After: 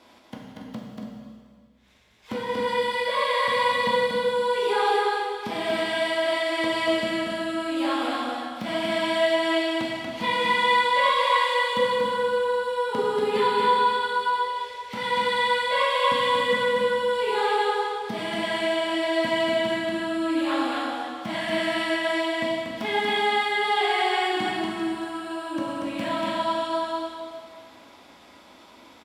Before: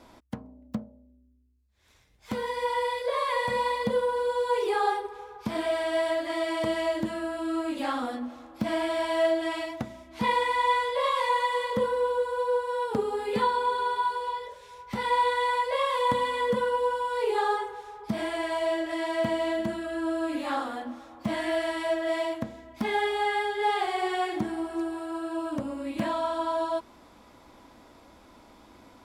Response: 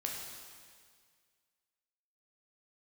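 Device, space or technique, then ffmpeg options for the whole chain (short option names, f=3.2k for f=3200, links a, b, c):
stadium PA: -filter_complex "[0:a]asettb=1/sr,asplit=3[a][b][c];[a]atrim=end=0.764[d];[b]atrim=start=0.76:end=2.66,asetpts=PTS-STARTPTS,afade=t=in:d=0.004:c=qsin,afade=t=out:st=1.896:d=0.004:c=qsin,tiltshelf=f=1.3k:g=4[e];[c]atrim=start=2.656[f];[d][e]acrossfade=d=0.004:c1=hsin:c2=qsin[g];[g][f]acrossfade=d=0.004:c1=qsin:c2=hsin,highpass=f=210:p=1,equalizer=f=3k:t=o:w=1.2:g=7,aecho=1:1:236.2|282.8:0.708|0.316[h];[1:a]atrim=start_sample=2205[i];[h][i]afir=irnorm=-1:irlink=0"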